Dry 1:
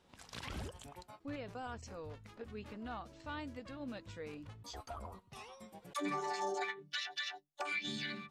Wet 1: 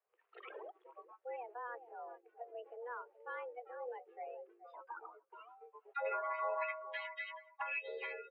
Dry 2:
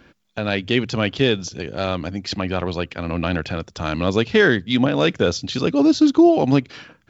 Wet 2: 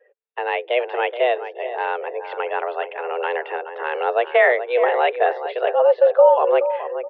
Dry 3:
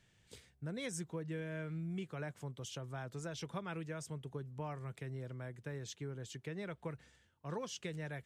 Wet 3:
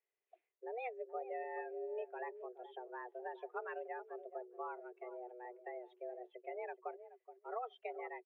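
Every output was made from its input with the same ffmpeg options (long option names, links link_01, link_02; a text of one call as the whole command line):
ffmpeg -i in.wav -filter_complex "[0:a]asplit=2[link_01][link_02];[link_02]adelay=424,lowpass=frequency=2000:poles=1,volume=-10dB,asplit=2[link_03][link_04];[link_04]adelay=424,lowpass=frequency=2000:poles=1,volume=0.31,asplit=2[link_05][link_06];[link_06]adelay=424,lowpass=frequency=2000:poles=1,volume=0.31[link_07];[link_01][link_03][link_05][link_07]amix=inputs=4:normalize=0,afftdn=noise_reduction=21:noise_floor=-43,highpass=frequency=170:width_type=q:width=0.5412,highpass=frequency=170:width_type=q:width=1.307,lowpass=frequency=2500:width_type=q:width=0.5176,lowpass=frequency=2500:width_type=q:width=0.7071,lowpass=frequency=2500:width_type=q:width=1.932,afreqshift=240" out.wav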